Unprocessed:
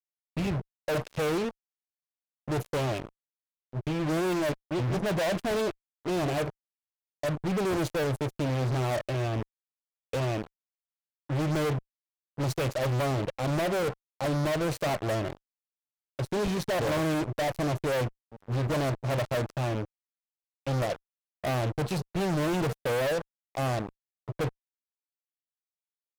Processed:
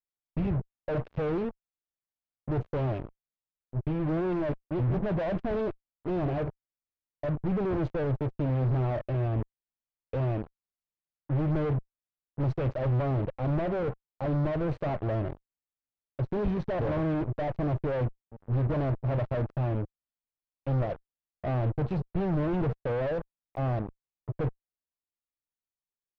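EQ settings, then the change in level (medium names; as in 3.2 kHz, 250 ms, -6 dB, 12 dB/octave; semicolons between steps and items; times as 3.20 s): tape spacing loss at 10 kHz 45 dB; bass shelf 81 Hz +10 dB; 0.0 dB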